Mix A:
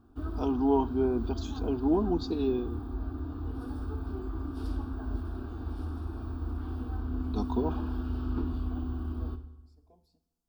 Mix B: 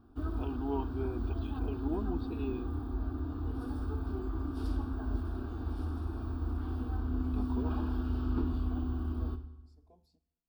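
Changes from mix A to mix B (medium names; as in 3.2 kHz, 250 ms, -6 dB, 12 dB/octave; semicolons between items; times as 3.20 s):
first voice: add four-pole ladder low-pass 3 kHz, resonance 60%; second voice: send -6.5 dB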